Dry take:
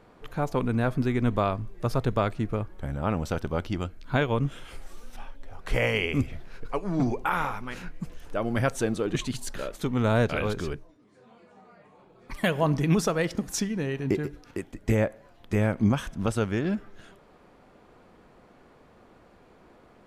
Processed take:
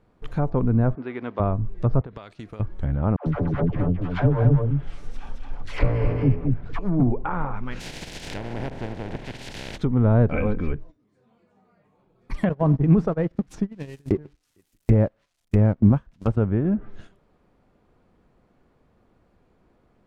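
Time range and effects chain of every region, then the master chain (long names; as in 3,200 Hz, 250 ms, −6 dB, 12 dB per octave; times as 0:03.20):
0:00.95–0:01.40: mu-law and A-law mismatch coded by A + high-pass filter 470 Hz + high-frequency loss of the air 220 metres
0:02.01–0:02.60: high-pass filter 580 Hz 6 dB per octave + dynamic equaliser 4,100 Hz, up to +7 dB, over −52 dBFS, Q 1.1 + downward compressor 10 to 1, threshold −37 dBFS
0:03.16–0:06.79: lower of the sound and its delayed copy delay 6.9 ms + all-pass dispersion lows, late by 101 ms, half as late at 560 Hz + single-tap delay 217 ms −3.5 dB
0:07.79–0:09.76: compressing power law on the bin magnitudes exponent 0.12 + parametric band 1,200 Hz −15 dB 0.39 octaves + background raised ahead of every attack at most 57 dB per second
0:10.31–0:10.72: parametric band 2,300 Hz +14.5 dB 0.31 octaves + comb filter 3.9 ms, depth 54%
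0:12.49–0:16.37: spike at every zero crossing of −23 dBFS + noise gate −27 dBFS, range −23 dB
whole clip: noise gate −47 dBFS, range −11 dB; treble cut that deepens with the level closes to 1,100 Hz, closed at −24 dBFS; low-shelf EQ 230 Hz +10.5 dB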